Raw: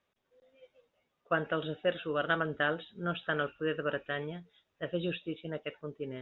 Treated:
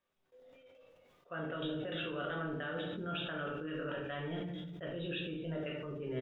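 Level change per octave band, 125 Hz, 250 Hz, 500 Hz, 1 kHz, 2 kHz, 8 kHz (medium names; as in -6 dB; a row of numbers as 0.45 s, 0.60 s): -1.5 dB, -1.5 dB, -6.0 dB, -7.0 dB, -8.0 dB, no reading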